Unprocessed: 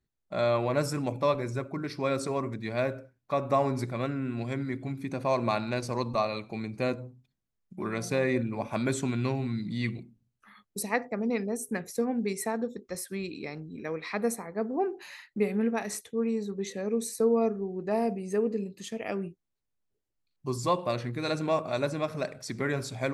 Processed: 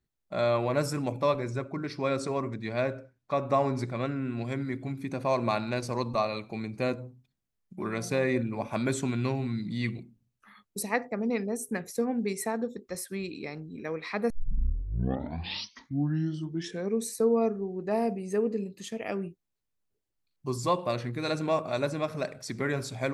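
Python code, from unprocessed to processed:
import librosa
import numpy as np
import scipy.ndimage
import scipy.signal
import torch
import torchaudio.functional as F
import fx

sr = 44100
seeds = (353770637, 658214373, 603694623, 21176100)

y = fx.lowpass(x, sr, hz=8200.0, slope=12, at=(1.39, 4.45))
y = fx.edit(y, sr, fx.tape_start(start_s=14.3, length_s=2.71), tone=tone)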